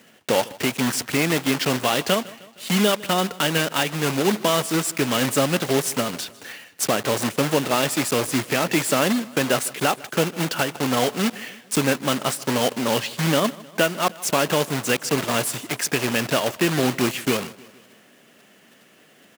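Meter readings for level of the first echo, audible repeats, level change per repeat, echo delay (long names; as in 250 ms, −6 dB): −21.0 dB, 3, −5.0 dB, 155 ms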